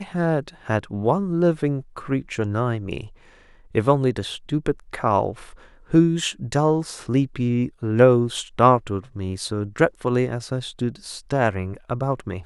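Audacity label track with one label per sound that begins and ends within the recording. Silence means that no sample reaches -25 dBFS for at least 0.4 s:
3.750000	5.310000	sound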